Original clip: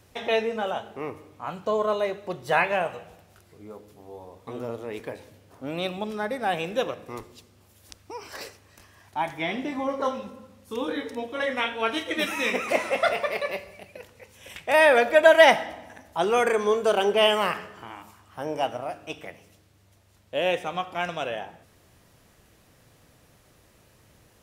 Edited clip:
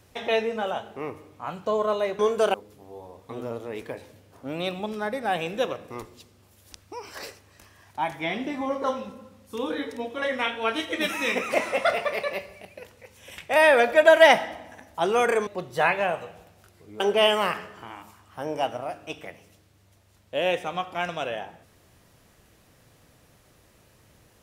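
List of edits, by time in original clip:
2.19–3.72 s: swap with 16.65–17.00 s

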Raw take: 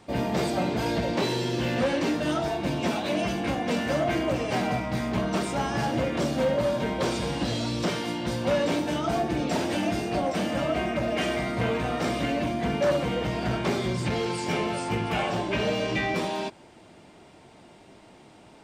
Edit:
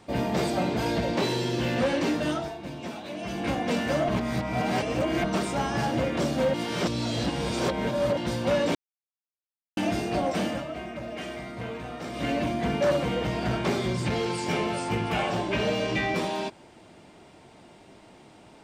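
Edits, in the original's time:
2.25–3.49 s: dip -9.5 dB, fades 0.29 s
4.09–5.24 s: reverse
6.54–8.17 s: reverse
8.75–9.77 s: mute
10.47–12.29 s: dip -9 dB, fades 0.17 s

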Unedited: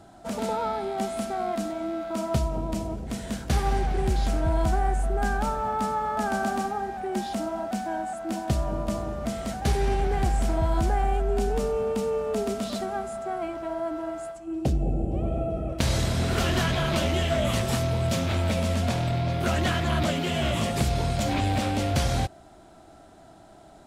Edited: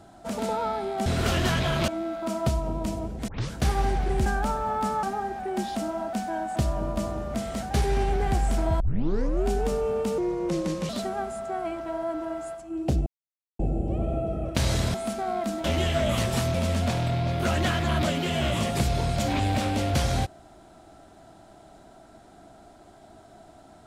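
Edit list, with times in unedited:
1.06–1.76 s: swap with 16.18–17.00 s
3.16 s: tape start 0.25 s
4.14–5.24 s: delete
6.01–6.61 s: delete
8.14–8.47 s: delete
10.71 s: tape start 0.65 s
12.09–12.66 s: speed 80%
14.83 s: insert silence 0.53 s
17.90–18.55 s: delete

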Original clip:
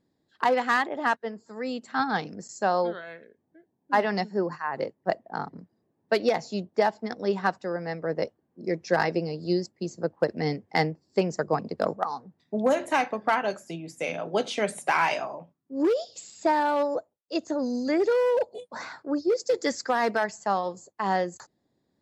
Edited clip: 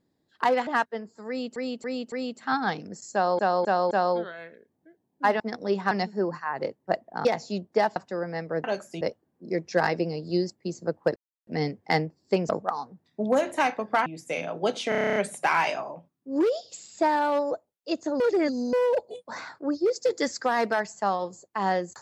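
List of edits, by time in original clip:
0.67–0.98 s: delete
1.59–1.87 s: loop, 4 plays
2.60–2.86 s: loop, 4 plays
5.43–6.27 s: delete
6.98–7.49 s: move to 4.09 s
10.32 s: insert silence 0.31 s
11.34–11.83 s: delete
13.40–13.77 s: move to 8.17 s
14.60 s: stutter 0.03 s, 10 plays
17.64–18.17 s: reverse

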